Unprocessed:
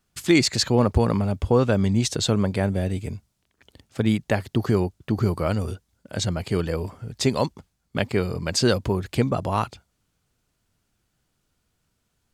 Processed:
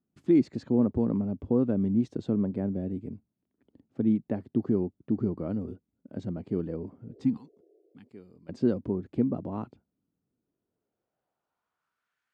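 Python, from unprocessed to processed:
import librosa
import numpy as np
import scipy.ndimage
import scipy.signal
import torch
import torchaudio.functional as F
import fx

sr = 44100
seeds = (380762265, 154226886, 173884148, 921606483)

y = fx.filter_sweep_bandpass(x, sr, from_hz=260.0, to_hz=1700.0, start_s=10.3, end_s=12.19, q=2.1)
y = fx.pre_emphasis(y, sr, coefficient=0.9, at=(7.37, 8.49))
y = fx.spec_repair(y, sr, seeds[0], start_s=7.1, length_s=0.96, low_hz=320.0, high_hz=720.0, source='both')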